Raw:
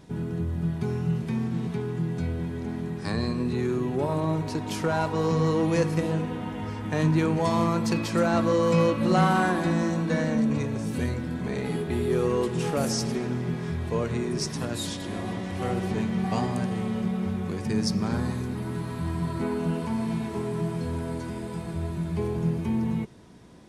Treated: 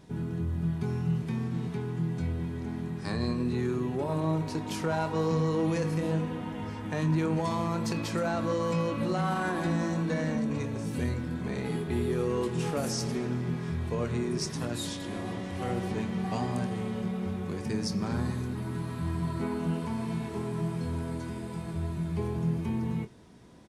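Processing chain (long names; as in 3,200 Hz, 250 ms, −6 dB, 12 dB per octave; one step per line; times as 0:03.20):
brickwall limiter −17 dBFS, peak gain reduction 7.5 dB
double-tracking delay 25 ms −11 dB
level −3.5 dB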